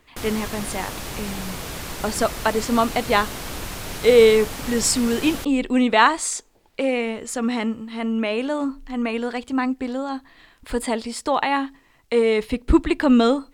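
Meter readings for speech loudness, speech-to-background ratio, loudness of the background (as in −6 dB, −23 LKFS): −21.5 LKFS, 10.0 dB, −31.5 LKFS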